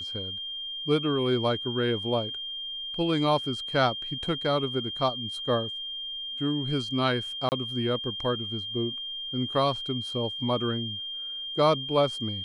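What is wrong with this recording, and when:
whine 3.2 kHz -33 dBFS
7.49–7.52 s: dropout 29 ms

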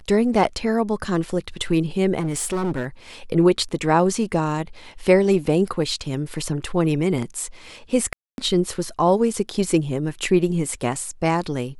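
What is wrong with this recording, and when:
2.19–2.87 s: clipped -20 dBFS
8.13–8.38 s: dropout 251 ms

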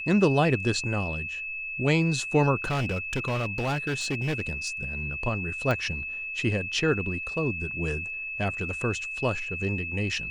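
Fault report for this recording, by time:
whine 2.6 kHz -32 dBFS
2.64–4.84 s: clipped -24 dBFS
5.71 s: pop -15 dBFS

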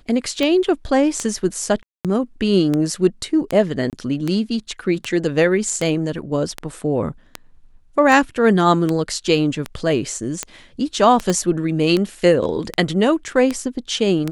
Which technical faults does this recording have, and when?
tick 78 rpm -8 dBFS
1.83–2.05 s: dropout 217 ms
3.90–3.93 s: dropout 28 ms
11.30 s: pop -8 dBFS

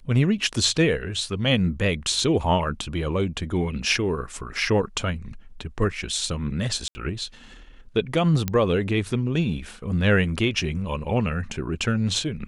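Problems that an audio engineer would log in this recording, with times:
6.88–6.95 s: dropout 70 ms
8.48 s: pop -10 dBFS

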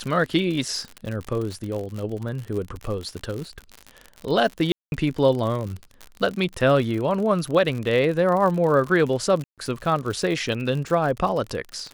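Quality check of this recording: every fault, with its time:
crackle 59 per s -28 dBFS
4.72–4.92 s: dropout 201 ms
9.44–9.58 s: dropout 137 ms

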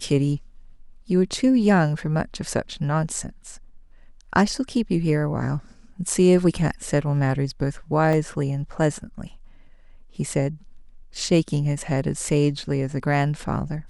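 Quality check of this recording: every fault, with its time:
8.13 s: dropout 2.2 ms

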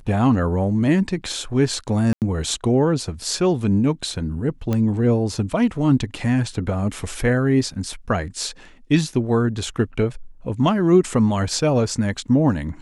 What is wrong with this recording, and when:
2.13–2.22 s: dropout 88 ms
4.73 s: pop -11 dBFS

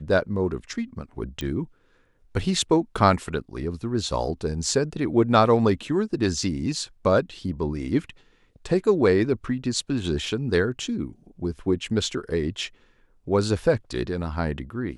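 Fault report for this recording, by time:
1.41 s: pop -17 dBFS

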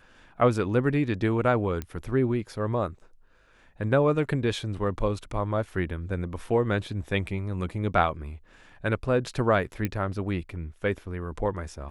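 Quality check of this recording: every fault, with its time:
1.82 s: pop -19 dBFS
9.85 s: pop -14 dBFS

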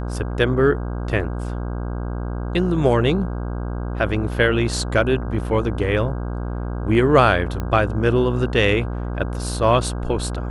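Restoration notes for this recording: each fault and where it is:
buzz 60 Hz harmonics 27 -26 dBFS
7.60 s: pop -14 dBFS

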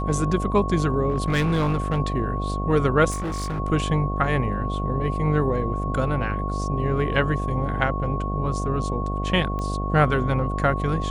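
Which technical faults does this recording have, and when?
buzz 50 Hz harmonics 15 -27 dBFS
whine 1.1 kHz -30 dBFS
1.09–1.99 s: clipped -17.5 dBFS
3.10–3.60 s: clipped -24.5 dBFS
9.59 s: pop -19 dBFS

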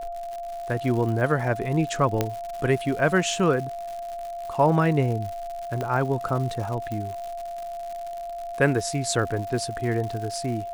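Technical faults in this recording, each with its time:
crackle 160 per s -32 dBFS
whine 690 Hz -31 dBFS
2.21 s: pop -8 dBFS
5.81 s: pop -16 dBFS
6.92 s: pop -20 dBFS

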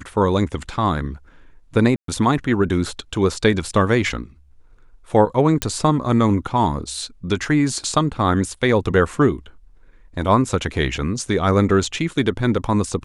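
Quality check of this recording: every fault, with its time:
1.96–2.08 s: dropout 123 ms
5.62 s: pop -4 dBFS

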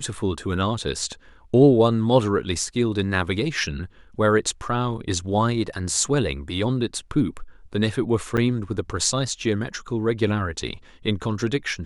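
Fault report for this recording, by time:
8.37–8.38 s: dropout 7.7 ms

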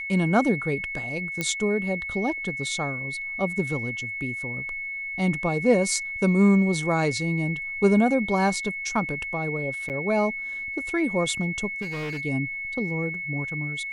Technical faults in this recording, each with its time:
whine 2.2 kHz -30 dBFS
1.41 s: pop -12 dBFS
9.89–9.90 s: dropout 8.4 ms
11.81–12.21 s: clipped -28 dBFS

